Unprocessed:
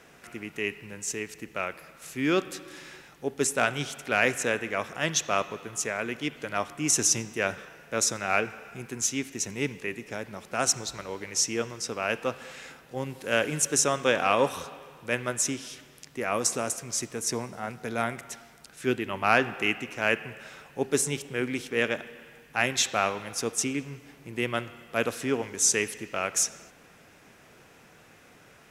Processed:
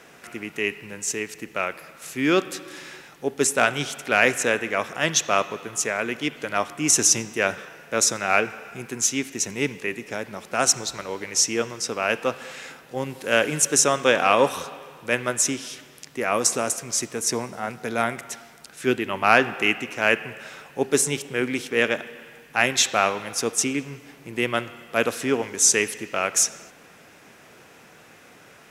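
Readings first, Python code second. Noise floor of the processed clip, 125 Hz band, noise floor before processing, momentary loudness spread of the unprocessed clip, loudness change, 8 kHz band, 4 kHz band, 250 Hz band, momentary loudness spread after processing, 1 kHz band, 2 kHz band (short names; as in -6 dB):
-50 dBFS, +2.0 dB, -55 dBFS, 17 LU, +5.5 dB, +5.5 dB, +5.5 dB, +4.5 dB, 17 LU, +5.5 dB, +5.5 dB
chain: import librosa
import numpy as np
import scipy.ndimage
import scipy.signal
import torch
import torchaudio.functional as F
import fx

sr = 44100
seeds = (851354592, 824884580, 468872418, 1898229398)

y = fx.low_shelf(x, sr, hz=90.0, db=-11.5)
y = y * librosa.db_to_amplitude(5.5)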